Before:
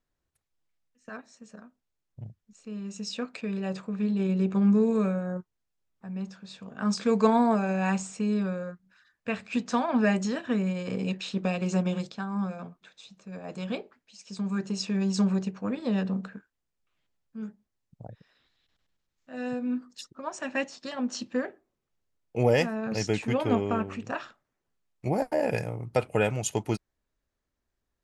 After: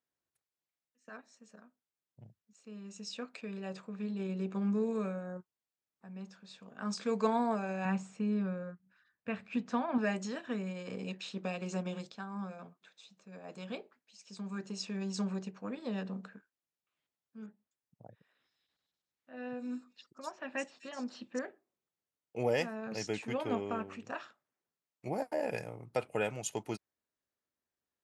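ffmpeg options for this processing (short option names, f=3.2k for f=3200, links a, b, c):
-filter_complex "[0:a]asettb=1/sr,asplit=3[a][b][c];[a]atrim=end=7.854[d];[b]atrim=start=7.85:end=9.98,asetpts=PTS-STARTPTS,afade=t=in:d=0.004:c=qsin,afade=t=out:st=2.126:d=0.004:c=qsin,bass=f=250:g=8,treble=f=4k:g=-11[e];[c]atrim=start=9.976[f];[d][e]acrossfade=d=0.004:c1=hsin:c2=qsin[g];[g][f]acrossfade=d=0.004:c1=qsin:c2=hsin,asettb=1/sr,asplit=3[h][i][j];[h]atrim=end=17.464[k];[i]atrim=start=17.46:end=21.39,asetpts=PTS-STARTPTS,afade=t=in:d=0.004:c=qsin,afade=t=out:st=3.926:d=0.004:c=qsin,acrossover=split=4000[l][m];[m]adelay=250[n];[l][n]amix=inputs=2:normalize=0,atrim=end_sample=173313[o];[j]atrim=start=21.386[p];[k][o]acrossfade=d=0.004:c1=hsin:c2=qsin[q];[q][p]acrossfade=d=0.004:c1=qsin:c2=hsin,highpass=85,lowshelf=f=160:g=-9.5,volume=-7dB"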